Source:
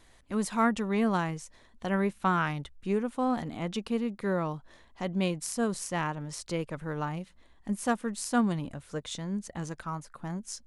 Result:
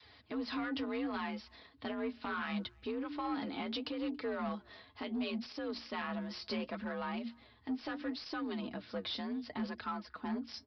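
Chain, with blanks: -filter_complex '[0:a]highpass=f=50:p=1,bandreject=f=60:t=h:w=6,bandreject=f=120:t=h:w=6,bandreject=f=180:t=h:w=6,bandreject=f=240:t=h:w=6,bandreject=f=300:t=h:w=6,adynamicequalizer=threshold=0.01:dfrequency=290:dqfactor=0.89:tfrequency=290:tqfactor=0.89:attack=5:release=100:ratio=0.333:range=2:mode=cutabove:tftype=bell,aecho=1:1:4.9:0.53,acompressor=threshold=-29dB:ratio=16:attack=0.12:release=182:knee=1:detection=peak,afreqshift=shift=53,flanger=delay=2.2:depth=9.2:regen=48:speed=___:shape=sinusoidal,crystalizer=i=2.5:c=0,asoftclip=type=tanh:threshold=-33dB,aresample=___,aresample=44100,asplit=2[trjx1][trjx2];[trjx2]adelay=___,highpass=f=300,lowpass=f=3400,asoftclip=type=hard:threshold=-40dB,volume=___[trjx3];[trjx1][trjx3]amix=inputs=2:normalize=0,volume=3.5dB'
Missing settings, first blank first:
0.71, 11025, 280, -28dB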